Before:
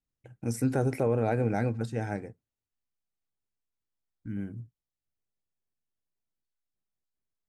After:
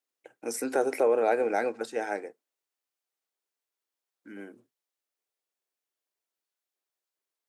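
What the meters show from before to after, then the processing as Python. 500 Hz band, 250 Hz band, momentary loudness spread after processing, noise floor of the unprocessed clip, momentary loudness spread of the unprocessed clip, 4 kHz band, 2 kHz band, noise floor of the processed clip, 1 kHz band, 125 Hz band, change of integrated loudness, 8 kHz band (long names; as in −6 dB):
+4.5 dB, −5.5 dB, 21 LU, below −85 dBFS, 15 LU, +5.0 dB, +5.0 dB, below −85 dBFS, +5.0 dB, below −25 dB, +2.0 dB, +5.0 dB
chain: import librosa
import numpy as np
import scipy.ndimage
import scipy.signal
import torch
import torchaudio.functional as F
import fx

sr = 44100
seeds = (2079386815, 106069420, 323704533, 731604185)

y = scipy.signal.sosfilt(scipy.signal.butter(4, 360.0, 'highpass', fs=sr, output='sos'), x)
y = F.gain(torch.from_numpy(y), 5.0).numpy()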